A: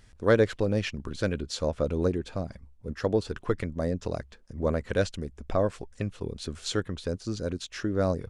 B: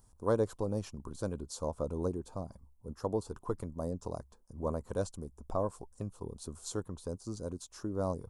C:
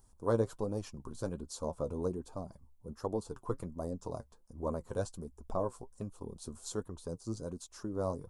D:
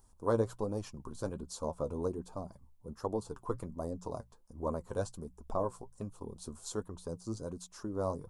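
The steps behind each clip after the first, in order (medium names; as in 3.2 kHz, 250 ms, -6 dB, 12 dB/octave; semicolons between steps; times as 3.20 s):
FFT filter 620 Hz 0 dB, 1 kHz +8 dB, 1.9 kHz -18 dB, 3 kHz -13 dB, 10 kHz +11 dB; trim -8 dB
flange 1.3 Hz, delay 2.3 ms, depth 6.8 ms, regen +51%; trim +3 dB
peaking EQ 1 kHz +2.5 dB; hum notches 60/120/180 Hz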